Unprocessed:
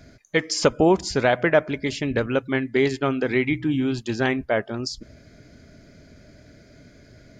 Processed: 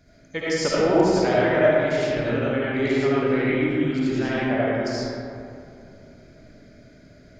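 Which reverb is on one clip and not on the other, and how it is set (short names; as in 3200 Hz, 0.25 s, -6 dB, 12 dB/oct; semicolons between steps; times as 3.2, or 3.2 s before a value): digital reverb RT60 2.6 s, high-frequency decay 0.45×, pre-delay 35 ms, DRR -9 dB; gain -9.5 dB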